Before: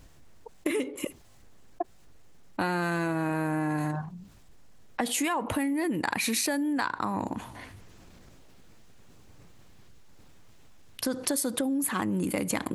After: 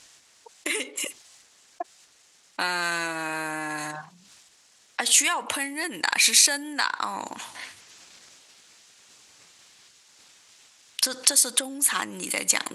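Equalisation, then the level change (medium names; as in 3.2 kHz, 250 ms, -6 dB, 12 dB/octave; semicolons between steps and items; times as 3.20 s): frequency weighting ITU-R 468; +2.0 dB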